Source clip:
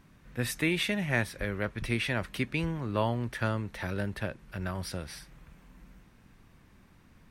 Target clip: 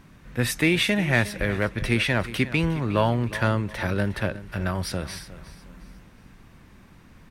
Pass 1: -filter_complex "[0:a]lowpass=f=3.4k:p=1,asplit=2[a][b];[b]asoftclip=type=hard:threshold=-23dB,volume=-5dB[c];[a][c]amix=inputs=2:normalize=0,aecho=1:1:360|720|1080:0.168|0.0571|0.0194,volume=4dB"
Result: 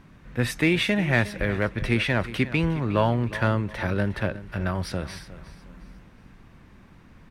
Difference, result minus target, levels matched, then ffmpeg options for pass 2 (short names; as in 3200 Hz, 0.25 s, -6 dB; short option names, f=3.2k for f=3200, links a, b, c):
8000 Hz band -6.0 dB
-filter_complex "[0:a]lowpass=f=13k:p=1,asplit=2[a][b];[b]asoftclip=type=hard:threshold=-23dB,volume=-5dB[c];[a][c]amix=inputs=2:normalize=0,aecho=1:1:360|720|1080:0.168|0.0571|0.0194,volume=4dB"